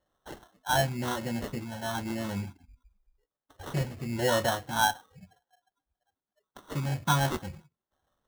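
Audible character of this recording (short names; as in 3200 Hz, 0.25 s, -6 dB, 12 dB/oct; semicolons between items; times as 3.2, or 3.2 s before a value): phasing stages 6, 0.97 Hz, lowest notch 350–4000 Hz; aliases and images of a low sample rate 2400 Hz, jitter 0%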